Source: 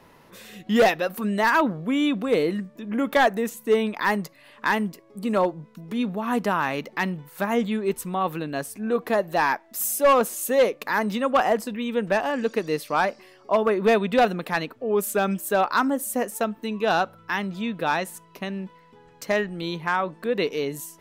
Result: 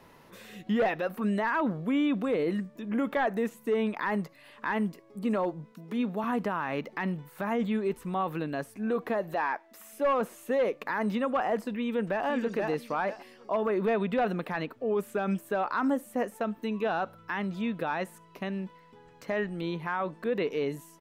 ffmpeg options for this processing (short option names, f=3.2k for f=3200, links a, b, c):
-filter_complex "[0:a]asettb=1/sr,asplit=3[a][b][c];[a]atrim=end=5.724[d];[b]atrim=start=5.72:end=6.24,asetpts=PTS-STARTPTS,afade=t=in:d=0.004:c=qsin,afade=t=out:st=0.516:d=0.004:c=qsin,highpass=180[e];[c]atrim=start=6.236[f];[d][e]acrossfade=d=0.004:c1=hsin:c2=qsin[g];[g][f]acrossfade=d=0.004:c1=qsin:c2=hsin,asettb=1/sr,asplit=3[h][i][j];[h]atrim=end=9.344[k];[i]atrim=start=9.34:end=9.93,asetpts=PTS-STARTPTS,afade=t=in:d=0.004:c=qsin,afade=t=out:st=0.586:d=0.004:c=qsin,bass=f=250:g=-10,treble=f=4k:g=-3[l];[j]atrim=start=9.926[m];[k][l]acrossfade=d=0.004:c1=hsin:c2=qsin[n];[n][m]acrossfade=d=0.004:c1=qsin:c2=hsin,asplit=2[o][p];[p]afade=t=in:st=11.81:d=0.01,afade=t=out:st=12.26:d=0.01,aecho=0:1:480|960|1440:0.473151|0.118288|0.029572[q];[o][q]amix=inputs=2:normalize=0,acrossover=split=2800[r][s];[s]acompressor=threshold=-50dB:ratio=4:attack=1:release=60[t];[r][t]amix=inputs=2:normalize=0,alimiter=limit=-18dB:level=0:latency=1:release=24,volume=-2.5dB"